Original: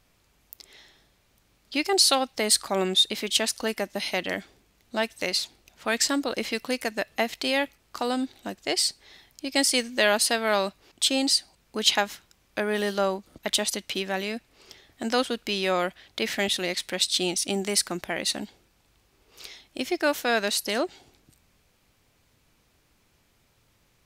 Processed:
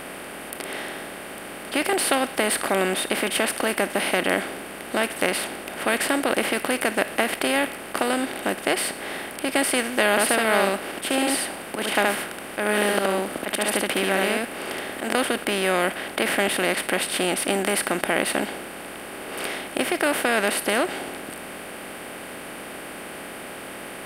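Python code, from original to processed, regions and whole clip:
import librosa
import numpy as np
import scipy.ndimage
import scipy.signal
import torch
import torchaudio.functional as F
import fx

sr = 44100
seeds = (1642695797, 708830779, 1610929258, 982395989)

y = fx.chain(x, sr, fx.auto_swell(attack_ms=129.0),
    fx.echo_single(ms=72, db=-3.5), at=(10.1, 15.15))
y = fx.bin_compress(y, sr, power=0.4)
y = fx.band_shelf(y, sr, hz=5200.0, db=-15.0, octaves=1.3)
y = y * 10.0 ** (-2.0 / 20.0)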